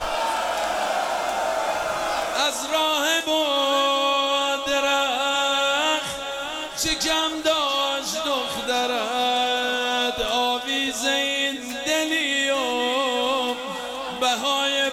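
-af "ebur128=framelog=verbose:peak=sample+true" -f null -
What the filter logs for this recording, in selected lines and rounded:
Integrated loudness:
  I:         -22.1 LUFS
  Threshold: -32.1 LUFS
Loudness range:
  LRA:         2.3 LU
  Threshold: -41.9 LUFS
  LRA low:   -22.8 LUFS
  LRA high:  -20.6 LUFS
Sample peak:
  Peak:      -10.4 dBFS
True peak:
  Peak:      -10.2 dBFS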